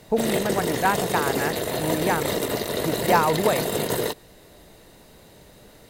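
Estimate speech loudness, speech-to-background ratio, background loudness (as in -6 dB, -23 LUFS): -26.0 LUFS, -0.5 dB, -25.5 LUFS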